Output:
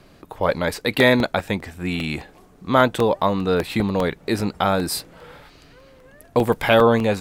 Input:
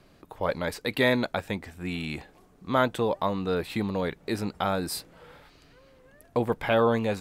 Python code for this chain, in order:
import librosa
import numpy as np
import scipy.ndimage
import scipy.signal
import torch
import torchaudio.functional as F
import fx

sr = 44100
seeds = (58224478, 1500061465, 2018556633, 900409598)

y = fx.high_shelf(x, sr, hz=4000.0, db=9.0, at=(6.37, 6.82))
y = fx.buffer_crackle(y, sr, first_s=0.8, period_s=0.2, block=64, kind='repeat')
y = F.gain(torch.from_numpy(y), 7.5).numpy()